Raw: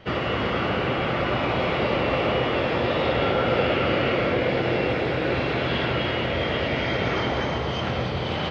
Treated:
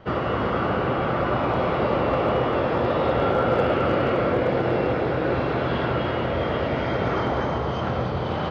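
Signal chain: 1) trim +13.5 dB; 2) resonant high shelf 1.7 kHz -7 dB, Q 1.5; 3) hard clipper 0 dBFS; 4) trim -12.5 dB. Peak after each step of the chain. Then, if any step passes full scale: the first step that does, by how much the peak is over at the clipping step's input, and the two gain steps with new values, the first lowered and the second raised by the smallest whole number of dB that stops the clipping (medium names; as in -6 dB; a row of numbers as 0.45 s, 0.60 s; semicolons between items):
+3.5 dBFS, +3.5 dBFS, 0.0 dBFS, -12.5 dBFS; step 1, 3.5 dB; step 1 +9.5 dB, step 4 -8.5 dB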